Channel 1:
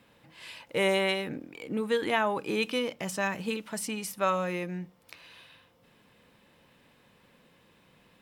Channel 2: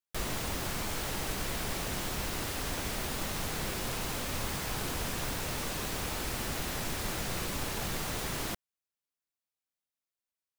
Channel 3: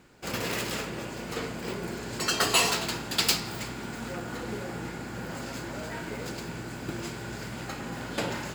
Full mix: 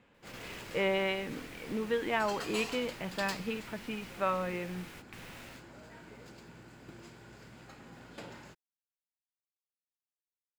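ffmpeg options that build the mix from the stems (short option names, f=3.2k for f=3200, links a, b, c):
-filter_complex "[0:a]lowpass=f=3.2k:w=0.5412,lowpass=f=3.2k:w=1.3066,volume=-4dB,asplit=2[a][b];[1:a]equalizer=f=2.2k:t=o:w=1.4:g=11,volume=-19.5dB[c];[2:a]highshelf=f=8.1k:g=-6.5,volume=-15.5dB[d];[b]apad=whole_len=466758[e];[c][e]sidechaingate=range=-23dB:threshold=-60dB:ratio=16:detection=peak[f];[a][f][d]amix=inputs=3:normalize=0"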